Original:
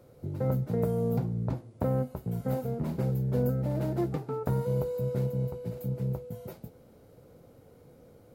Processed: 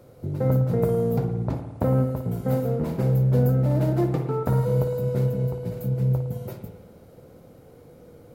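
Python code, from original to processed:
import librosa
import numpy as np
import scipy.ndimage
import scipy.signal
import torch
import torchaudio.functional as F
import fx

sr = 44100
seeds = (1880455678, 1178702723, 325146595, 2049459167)

y = fx.rev_spring(x, sr, rt60_s=1.2, pass_ms=(54,), chirp_ms=80, drr_db=6.0)
y = y * 10.0 ** (5.5 / 20.0)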